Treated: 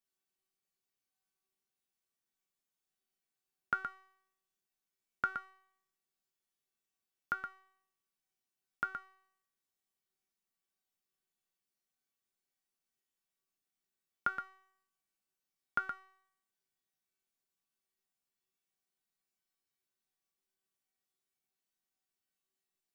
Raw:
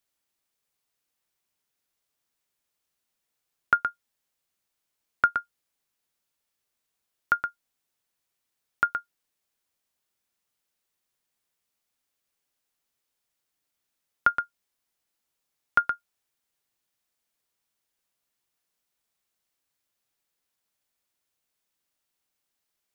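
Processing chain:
parametric band 200 Hz +8 dB 1.1 octaves
tuned comb filter 380 Hz, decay 0.72 s, mix 90%
level +6.5 dB

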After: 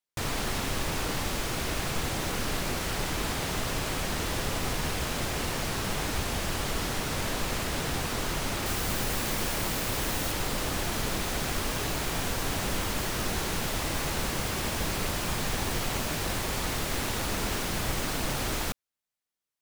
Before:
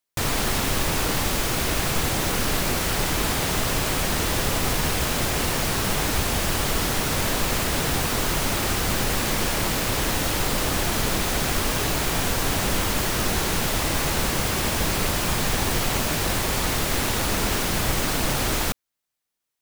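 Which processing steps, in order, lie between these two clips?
high-shelf EQ 11,000 Hz −7 dB, from 0:08.66 +2.5 dB, from 0:10.32 −3 dB
level −6.5 dB

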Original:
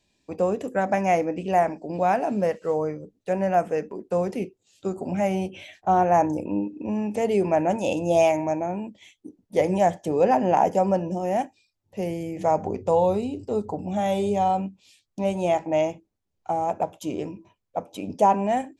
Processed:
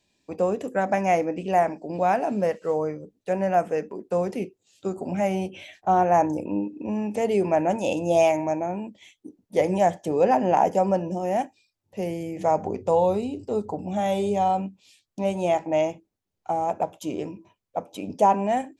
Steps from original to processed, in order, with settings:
low-shelf EQ 76 Hz −7.5 dB

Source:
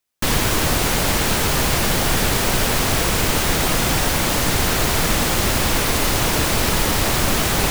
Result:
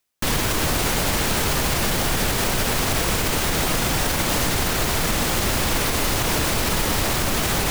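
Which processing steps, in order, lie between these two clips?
reversed playback
upward compression, threshold −21 dBFS
reversed playback
brickwall limiter −11.5 dBFS, peak gain reduction 7 dB

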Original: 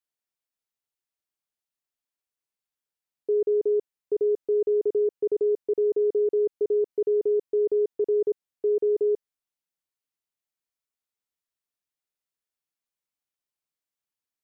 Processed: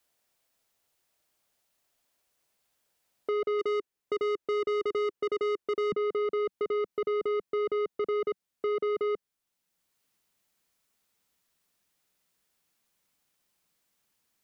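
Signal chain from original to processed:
parametric band 630 Hz +5 dB 0.61 octaves, from 0:03.59 390 Hz, from 0:05.92 190 Hz
soft clipping −30 dBFS, distortion −8 dB
multiband upward and downward compressor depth 40%
level +3 dB

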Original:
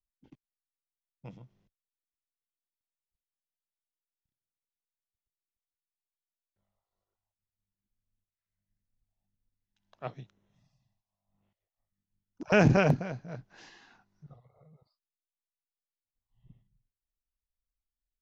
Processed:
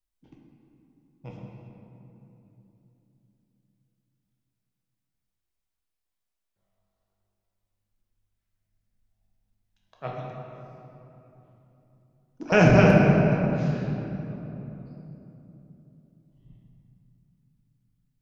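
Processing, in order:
rectangular room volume 180 cubic metres, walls hard, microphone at 0.61 metres
level +2.5 dB

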